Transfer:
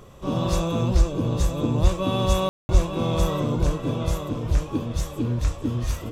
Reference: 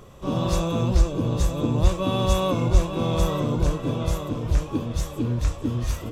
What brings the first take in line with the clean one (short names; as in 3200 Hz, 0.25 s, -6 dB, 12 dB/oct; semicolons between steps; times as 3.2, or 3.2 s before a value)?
room tone fill 2.49–2.69